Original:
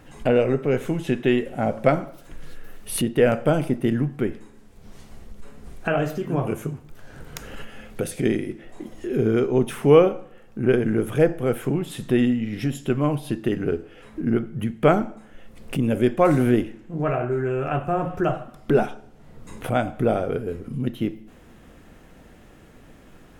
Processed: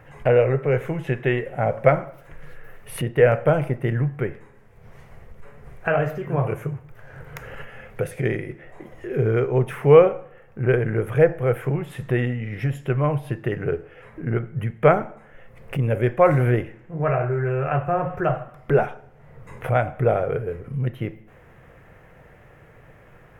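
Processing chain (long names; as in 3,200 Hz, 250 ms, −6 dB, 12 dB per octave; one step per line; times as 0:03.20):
graphic EQ with 10 bands 125 Hz +12 dB, 250 Hz −10 dB, 500 Hz +8 dB, 1,000 Hz +4 dB, 2,000 Hz +10 dB, 4,000 Hz −8 dB, 8,000 Hz −6 dB
level −4.5 dB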